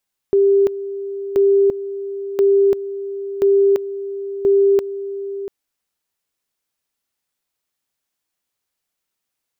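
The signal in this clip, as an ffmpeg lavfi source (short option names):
-f lavfi -i "aevalsrc='pow(10,(-10-13.5*gte(mod(t,1.03),0.34))/20)*sin(2*PI*396*t)':d=5.15:s=44100"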